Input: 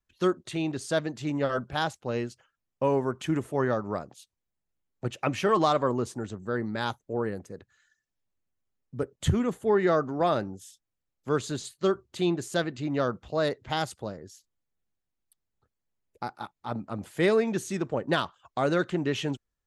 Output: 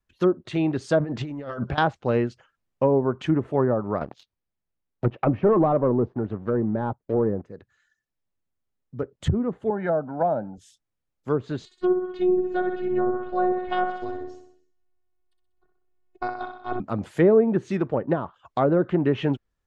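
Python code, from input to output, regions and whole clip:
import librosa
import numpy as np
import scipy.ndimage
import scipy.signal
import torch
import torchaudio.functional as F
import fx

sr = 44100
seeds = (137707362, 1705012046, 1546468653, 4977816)

y = fx.chain(x, sr, fx.over_compress(threshold_db=-38.0, ratio=-1.0),
    fx.high_shelf(hz=4700.0, db=-9.0), at=(1.0, 1.78))
y = fx.chain(y, sr, fx.lowpass(hz=5200.0, slope=24),
    fx.leveller(passes=2), at=(4.01, 7.42))
y = fx.chain(y, sr, fx.highpass(hz=190.0, slope=12),
    fx.comb(ms=1.3, depth=0.72), at=(9.7, 10.58))
y = fx.chain(y, sr, fx.robotise(hz=363.0),
    fx.air_absorb(metres=160.0),
    fx.echo_feedback(ms=63, feedback_pct=55, wet_db=-6.5), at=(11.65, 16.8))
y = fx.env_lowpass_down(y, sr, base_hz=720.0, full_db=-21.0)
y = fx.rider(y, sr, range_db=10, speed_s=2.0)
y = fx.high_shelf(y, sr, hz=3700.0, db=-8.5)
y = y * 10.0 ** (3.0 / 20.0)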